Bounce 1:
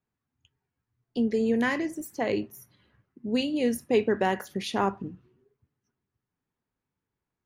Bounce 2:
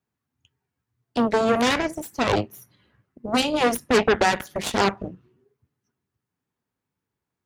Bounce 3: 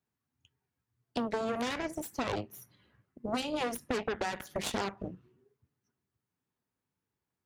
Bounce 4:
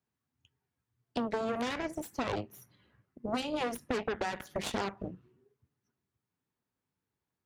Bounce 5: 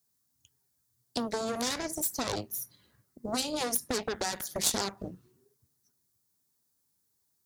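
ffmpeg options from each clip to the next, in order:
ffmpeg -i in.wav -af "aeval=exprs='0.266*(cos(1*acos(clip(val(0)/0.266,-1,1)))-cos(1*PI/2))+0.0944*(cos(8*acos(clip(val(0)/0.266,-1,1)))-cos(8*PI/2))':channel_layout=same,highpass=63,volume=2.5dB" out.wav
ffmpeg -i in.wav -af "acompressor=threshold=-25dB:ratio=10,volume=-4.5dB" out.wav
ffmpeg -i in.wav -af "highshelf=frequency=5300:gain=-5" out.wav
ffmpeg -i in.wav -af "aexciter=amount=6.7:drive=3.8:freq=4000" out.wav

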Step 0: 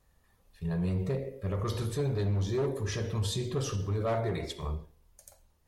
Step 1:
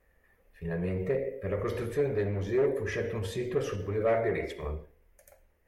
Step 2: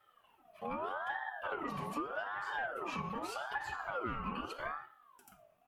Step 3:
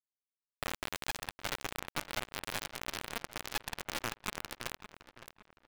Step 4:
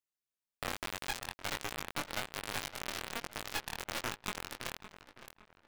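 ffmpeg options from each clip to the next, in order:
ffmpeg -i in.wav -af "equalizer=frequency=125:width_type=o:width=1:gain=-7,equalizer=frequency=500:width_type=o:width=1:gain=8,equalizer=frequency=1000:width_type=o:width=1:gain=-6,equalizer=frequency=2000:width_type=o:width=1:gain=12,equalizer=frequency=4000:width_type=o:width=1:gain=-11,equalizer=frequency=8000:width_type=o:width=1:gain=-8" out.wav
ffmpeg -i in.wav -af "aecho=1:1:4.2:0.64,acompressor=threshold=-32dB:ratio=6,aeval=exprs='val(0)*sin(2*PI*970*n/s+970*0.35/0.82*sin(2*PI*0.82*n/s))':channel_layout=same,volume=-1dB" out.wav
ffmpeg -i in.wav -filter_complex "[0:a]acompressor=threshold=-52dB:ratio=2.5,acrusher=bits=4:dc=4:mix=0:aa=0.000001,asplit=2[link_01][link_02];[link_02]adelay=562,lowpass=frequency=3200:poles=1,volume=-12dB,asplit=2[link_03][link_04];[link_04]adelay=562,lowpass=frequency=3200:poles=1,volume=0.39,asplit=2[link_05][link_06];[link_06]adelay=562,lowpass=frequency=3200:poles=1,volume=0.39,asplit=2[link_07][link_08];[link_08]adelay=562,lowpass=frequency=3200:poles=1,volume=0.39[link_09];[link_01][link_03][link_05][link_07][link_09]amix=inputs=5:normalize=0,volume=15dB" out.wav
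ffmpeg -i in.wav -af "flanger=delay=19.5:depth=4.2:speed=1.2,volume=3dB" out.wav

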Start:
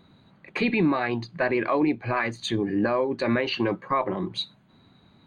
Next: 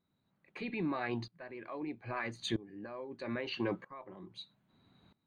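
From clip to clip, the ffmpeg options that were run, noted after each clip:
ffmpeg -i in.wav -af "aeval=exprs='val(0)*pow(10,-20*if(lt(mod(-0.78*n/s,1),2*abs(-0.78)/1000),1-mod(-0.78*n/s,1)/(2*abs(-0.78)/1000),(mod(-0.78*n/s,1)-2*abs(-0.78)/1000)/(1-2*abs(-0.78)/1000))/20)':channel_layout=same,volume=-6.5dB" out.wav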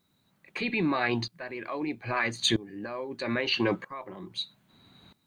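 ffmpeg -i in.wav -af "highshelf=frequency=2200:gain=9,volume=7.5dB" out.wav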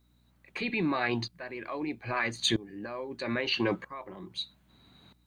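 ffmpeg -i in.wav -af "aeval=exprs='val(0)+0.000631*(sin(2*PI*60*n/s)+sin(2*PI*2*60*n/s)/2+sin(2*PI*3*60*n/s)/3+sin(2*PI*4*60*n/s)/4+sin(2*PI*5*60*n/s)/5)':channel_layout=same,volume=-2dB" out.wav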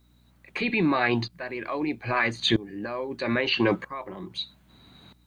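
ffmpeg -i in.wav -filter_complex "[0:a]acrossover=split=4500[link_01][link_02];[link_02]acompressor=threshold=-54dB:ratio=4:attack=1:release=60[link_03];[link_01][link_03]amix=inputs=2:normalize=0,volume=6dB" out.wav

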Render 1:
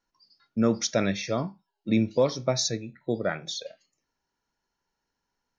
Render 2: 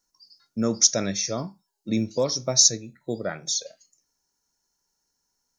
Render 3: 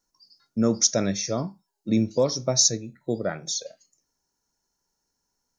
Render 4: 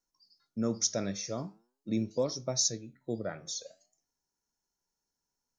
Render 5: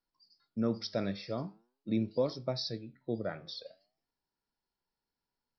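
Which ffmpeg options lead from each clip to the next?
ffmpeg -i in.wav -af "highshelf=frequency=4400:width_type=q:width=1.5:gain=13.5,volume=-1.5dB" out.wav
ffmpeg -i in.wav -af "tiltshelf=frequency=1300:gain=3" out.wav
ffmpeg -i in.wav -af "flanger=delay=2.4:depth=9.9:regen=89:speed=0.42:shape=triangular,volume=-4.5dB" out.wav
ffmpeg -i in.wav -af "aresample=11025,aresample=44100" out.wav

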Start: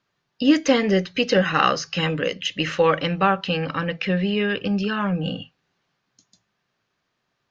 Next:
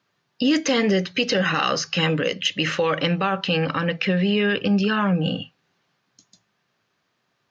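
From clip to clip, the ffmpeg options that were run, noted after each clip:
ffmpeg -i in.wav -filter_complex "[0:a]highpass=89,acrossover=split=3000[link_01][link_02];[link_01]alimiter=limit=-16dB:level=0:latency=1:release=59[link_03];[link_03][link_02]amix=inputs=2:normalize=0,volume=3.5dB" out.wav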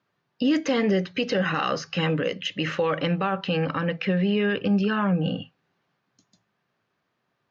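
ffmpeg -i in.wav -af "highshelf=frequency=3300:gain=-11.5,volume=-2dB" out.wav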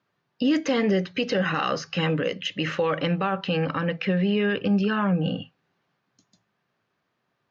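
ffmpeg -i in.wav -af anull out.wav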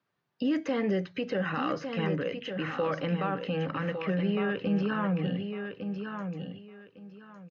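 ffmpeg -i in.wav -filter_complex "[0:a]acrossover=split=100|2500[link_01][link_02][link_03];[link_03]acompressor=threshold=-46dB:ratio=5[link_04];[link_01][link_02][link_04]amix=inputs=3:normalize=0,aecho=1:1:1156|2312|3468:0.447|0.0983|0.0216,volume=-6dB" out.wav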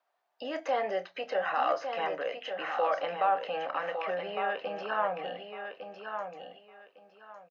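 ffmpeg -i in.wav -filter_complex "[0:a]highpass=frequency=700:width_type=q:width=4.9,asplit=2[link_01][link_02];[link_02]adelay=28,volume=-12dB[link_03];[link_01][link_03]amix=inputs=2:normalize=0,volume=-1.5dB" out.wav

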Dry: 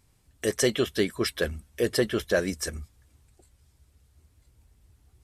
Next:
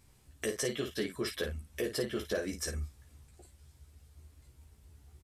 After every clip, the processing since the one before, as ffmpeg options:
ffmpeg -i in.wav -af "acompressor=threshold=-37dB:ratio=3,aecho=1:1:14|54:0.668|0.422" out.wav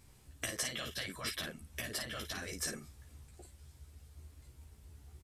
ffmpeg -i in.wav -af "afftfilt=real='re*lt(hypot(re,im),0.0501)':imag='im*lt(hypot(re,im),0.0501)':win_size=1024:overlap=0.75,volume=2dB" out.wav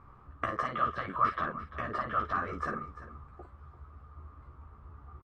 ffmpeg -i in.wav -af "lowpass=frequency=1200:width_type=q:width=13,aecho=1:1:344:0.178,volume=5dB" out.wav

